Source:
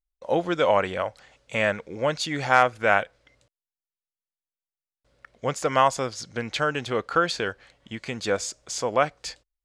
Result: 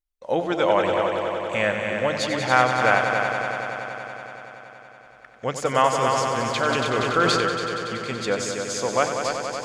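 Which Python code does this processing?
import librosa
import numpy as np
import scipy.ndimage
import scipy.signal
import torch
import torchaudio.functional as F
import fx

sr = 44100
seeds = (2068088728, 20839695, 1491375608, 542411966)

y = fx.hum_notches(x, sr, base_hz=50, count=3)
y = fx.echo_heads(y, sr, ms=94, heads='all three', feedback_pct=74, wet_db=-10)
y = fx.sustainer(y, sr, db_per_s=20.0, at=(6.01, 7.48))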